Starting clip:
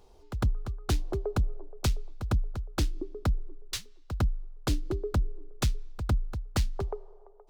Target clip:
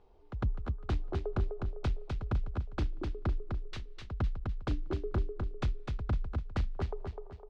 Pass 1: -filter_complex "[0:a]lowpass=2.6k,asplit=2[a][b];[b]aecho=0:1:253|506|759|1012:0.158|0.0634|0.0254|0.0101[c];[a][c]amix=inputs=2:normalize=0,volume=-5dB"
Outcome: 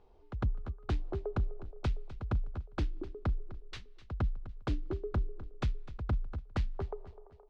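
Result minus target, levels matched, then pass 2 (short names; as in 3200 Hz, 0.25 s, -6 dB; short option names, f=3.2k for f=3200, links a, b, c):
echo-to-direct -11.5 dB
-filter_complex "[0:a]lowpass=2.6k,asplit=2[a][b];[b]aecho=0:1:253|506|759|1012|1265:0.596|0.238|0.0953|0.0381|0.0152[c];[a][c]amix=inputs=2:normalize=0,volume=-5dB"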